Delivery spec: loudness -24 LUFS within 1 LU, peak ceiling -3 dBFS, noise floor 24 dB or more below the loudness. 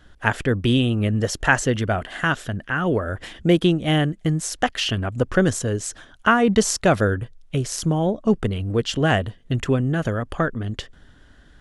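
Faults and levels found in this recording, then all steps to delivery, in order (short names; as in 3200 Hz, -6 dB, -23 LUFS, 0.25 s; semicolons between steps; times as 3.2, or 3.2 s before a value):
loudness -22.0 LUFS; peak -1.5 dBFS; loudness target -24.0 LUFS
-> gain -2 dB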